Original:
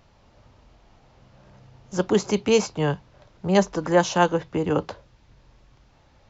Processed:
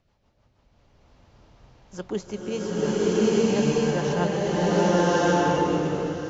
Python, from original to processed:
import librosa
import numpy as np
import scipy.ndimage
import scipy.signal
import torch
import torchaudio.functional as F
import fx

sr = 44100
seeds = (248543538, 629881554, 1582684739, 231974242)

y = fx.rotary_switch(x, sr, hz=6.3, then_hz=0.8, switch_at_s=0.45)
y = y + 10.0 ** (-15.5 / 20.0) * np.pad(y, (int(1081 * sr / 1000.0), 0))[:len(y)]
y = fx.rev_bloom(y, sr, seeds[0], attack_ms=1210, drr_db=-12.0)
y = y * librosa.db_to_amplitude(-9.0)